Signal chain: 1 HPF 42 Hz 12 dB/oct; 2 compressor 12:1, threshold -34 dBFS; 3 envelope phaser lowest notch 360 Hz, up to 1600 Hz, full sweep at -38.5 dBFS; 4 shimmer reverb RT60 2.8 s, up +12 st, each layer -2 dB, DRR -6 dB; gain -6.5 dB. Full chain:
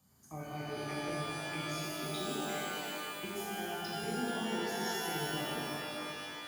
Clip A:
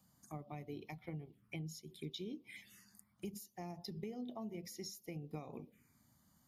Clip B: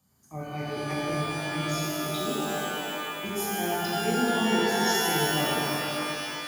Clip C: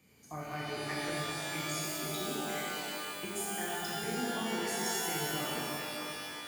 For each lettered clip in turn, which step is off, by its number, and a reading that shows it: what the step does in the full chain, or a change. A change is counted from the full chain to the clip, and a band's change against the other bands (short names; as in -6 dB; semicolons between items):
4, 125 Hz band +8.5 dB; 2, mean gain reduction 7.5 dB; 3, 8 kHz band +6.0 dB